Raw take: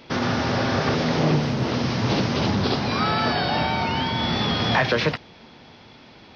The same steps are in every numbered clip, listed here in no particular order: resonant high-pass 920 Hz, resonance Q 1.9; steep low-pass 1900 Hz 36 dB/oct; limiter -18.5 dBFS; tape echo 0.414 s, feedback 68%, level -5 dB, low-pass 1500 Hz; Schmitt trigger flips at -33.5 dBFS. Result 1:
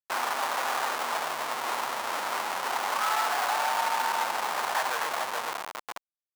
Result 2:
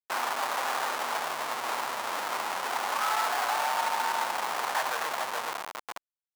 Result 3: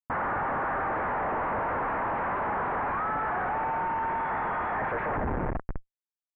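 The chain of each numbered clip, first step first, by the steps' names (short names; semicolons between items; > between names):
tape echo > steep low-pass > limiter > Schmitt trigger > resonant high-pass; tape echo > limiter > steep low-pass > Schmitt trigger > resonant high-pass; resonant high-pass > limiter > tape echo > Schmitt trigger > steep low-pass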